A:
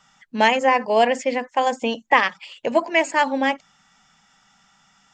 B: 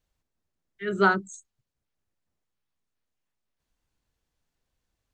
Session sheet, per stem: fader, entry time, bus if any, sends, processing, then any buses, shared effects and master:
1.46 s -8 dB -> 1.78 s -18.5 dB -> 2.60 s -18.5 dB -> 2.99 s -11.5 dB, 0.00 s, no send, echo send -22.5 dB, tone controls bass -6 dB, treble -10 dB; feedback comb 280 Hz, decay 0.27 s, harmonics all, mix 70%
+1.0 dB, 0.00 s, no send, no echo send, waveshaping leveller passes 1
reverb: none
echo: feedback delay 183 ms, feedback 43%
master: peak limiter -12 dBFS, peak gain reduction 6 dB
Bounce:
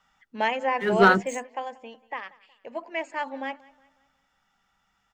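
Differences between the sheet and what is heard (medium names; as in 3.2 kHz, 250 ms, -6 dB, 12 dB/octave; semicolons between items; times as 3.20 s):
stem A: missing feedback comb 280 Hz, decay 0.27 s, harmonics all, mix 70%; master: missing peak limiter -12 dBFS, peak gain reduction 6 dB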